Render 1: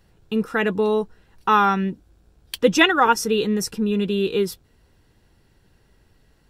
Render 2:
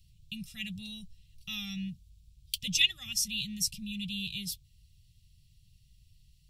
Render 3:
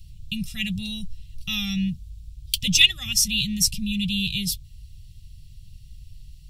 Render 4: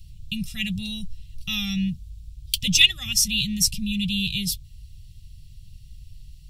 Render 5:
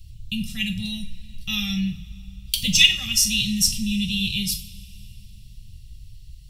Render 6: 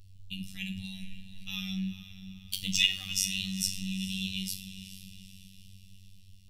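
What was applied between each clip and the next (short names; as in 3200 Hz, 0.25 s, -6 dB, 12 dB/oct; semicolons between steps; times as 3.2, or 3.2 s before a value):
inverse Chebyshev band-stop 270–1600 Hz, stop band 40 dB; gain -1.5 dB
in parallel at -12 dB: hard clip -26 dBFS, distortion -8 dB; on the sum: low shelf 91 Hz +10.5 dB; gain +8.5 dB
nothing audible
two-slope reverb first 0.4 s, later 3 s, from -21 dB, DRR 4 dB
diffused feedback echo 0.451 s, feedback 49%, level -13 dB; robotiser 95 Hz; gain -9 dB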